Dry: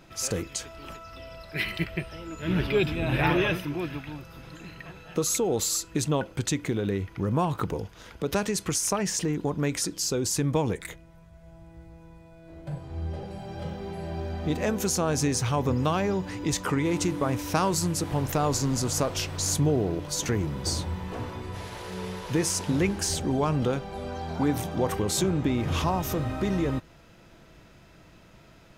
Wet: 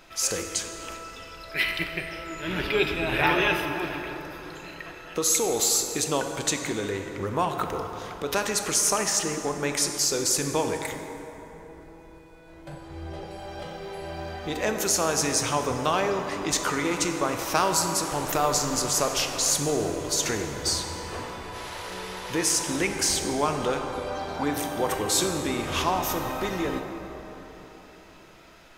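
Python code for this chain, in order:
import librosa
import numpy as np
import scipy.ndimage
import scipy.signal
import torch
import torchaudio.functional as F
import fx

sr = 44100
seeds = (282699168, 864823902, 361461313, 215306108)

y = fx.peak_eq(x, sr, hz=120.0, db=-14.5, octaves=3.0)
y = fx.rev_plate(y, sr, seeds[0], rt60_s=4.0, hf_ratio=0.45, predelay_ms=0, drr_db=4.5)
y = y * librosa.db_to_amplitude(4.5)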